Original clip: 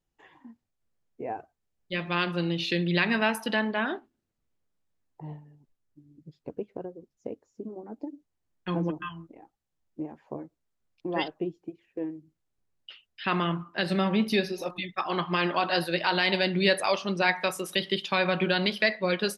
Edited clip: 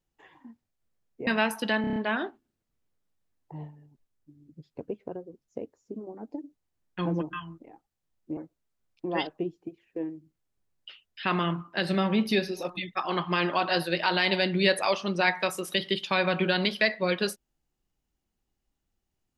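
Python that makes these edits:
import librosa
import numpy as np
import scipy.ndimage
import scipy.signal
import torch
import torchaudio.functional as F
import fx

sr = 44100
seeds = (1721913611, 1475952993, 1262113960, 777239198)

y = fx.edit(x, sr, fx.cut(start_s=1.27, length_s=1.84),
    fx.stutter(start_s=3.65, slice_s=0.03, count=6),
    fx.cut(start_s=10.06, length_s=0.32), tone=tone)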